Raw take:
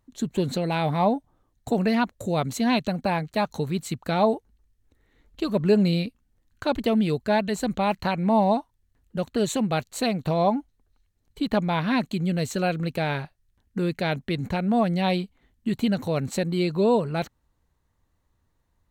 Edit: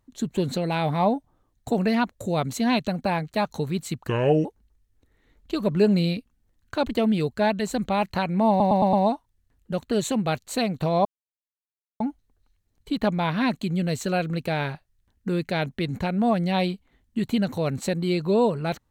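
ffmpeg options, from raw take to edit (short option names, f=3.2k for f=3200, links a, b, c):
-filter_complex "[0:a]asplit=8[a][b][c][d][e][f][g][h];[a]atrim=end=4.084[i];[b]atrim=start=4.08:end=4.34,asetpts=PTS-STARTPTS,asetrate=30870,aresample=44100,atrim=end_sample=16380,asetpts=PTS-STARTPTS[j];[c]atrim=start=4.336:end=8.492[k];[d]atrim=start=8.378:end=8.492[l];[e]atrim=start=8.378:end=8.492[m];[f]atrim=start=8.378:end=8.492[n];[g]atrim=start=8.378:end=10.5,asetpts=PTS-STARTPTS,afade=t=out:st=2.118:d=0.004:c=hsin,apad=pad_dur=0.95[o];[h]atrim=start=10.5,asetpts=PTS-STARTPTS,afade=t=in:d=0.004:c=hsin[p];[i][j]acrossfade=d=0.004:c1=hsin:c2=hsin[q];[q][k]acrossfade=d=0.004:c1=hsin:c2=hsin[r];[r][l]acrossfade=d=0.004:c1=hsin:c2=hsin[s];[s][m]acrossfade=d=0.004:c1=hsin:c2=hsin[t];[t][n]acrossfade=d=0.004:c1=hsin:c2=hsin[u];[o][p]concat=n=2:v=0:a=1[v];[u][v]acrossfade=d=0.004:c1=hsin:c2=hsin"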